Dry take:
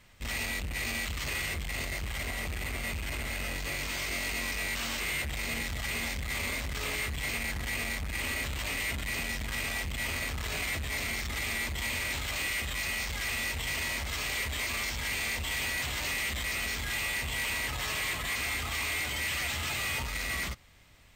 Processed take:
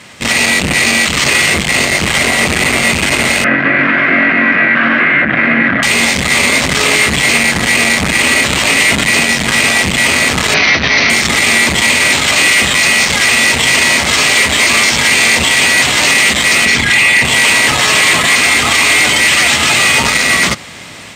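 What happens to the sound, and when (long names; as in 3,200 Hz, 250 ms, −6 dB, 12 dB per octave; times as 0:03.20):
0:03.44–0:05.83: loudspeaker in its box 150–2,000 Hz, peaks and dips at 280 Hz +6 dB, 430 Hz −9 dB, 880 Hz −9 dB, 1,600 Hz +9 dB
0:10.54–0:11.10: Chebyshev low-pass with heavy ripple 6,100 Hz, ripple 3 dB
0:16.65–0:17.25: spectral envelope exaggerated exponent 1.5
whole clip: Chebyshev band-pass filter 190–9,000 Hz, order 2; automatic gain control gain up to 6 dB; boost into a limiter +26.5 dB; level −1 dB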